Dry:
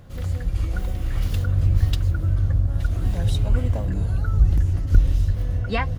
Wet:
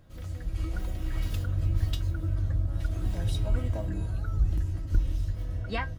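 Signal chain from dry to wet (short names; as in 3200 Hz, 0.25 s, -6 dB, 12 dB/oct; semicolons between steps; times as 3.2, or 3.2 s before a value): AGC gain up to 4.5 dB; resonator 320 Hz, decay 0.18 s, harmonics all, mix 80%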